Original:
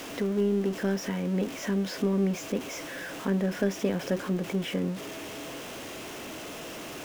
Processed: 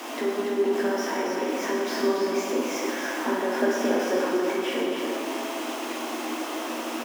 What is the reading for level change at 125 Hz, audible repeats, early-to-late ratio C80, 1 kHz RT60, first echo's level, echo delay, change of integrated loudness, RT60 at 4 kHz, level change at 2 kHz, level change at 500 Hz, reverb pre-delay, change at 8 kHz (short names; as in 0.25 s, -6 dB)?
under -15 dB, 1, 0.0 dB, 1.5 s, -5.0 dB, 0.285 s, +3.5 dB, 1.4 s, +7.0 dB, +6.0 dB, 7 ms, +4.5 dB